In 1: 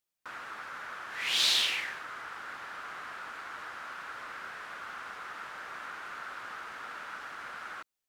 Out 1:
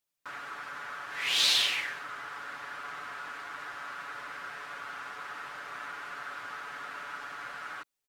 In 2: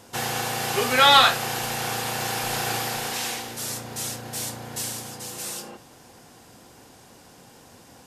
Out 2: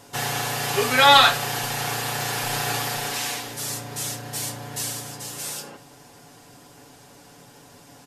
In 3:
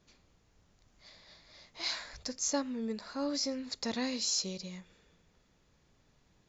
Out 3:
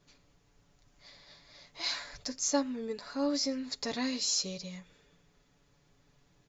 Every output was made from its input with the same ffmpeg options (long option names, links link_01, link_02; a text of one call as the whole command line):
ffmpeg -i in.wav -af "aecho=1:1:7:0.59" out.wav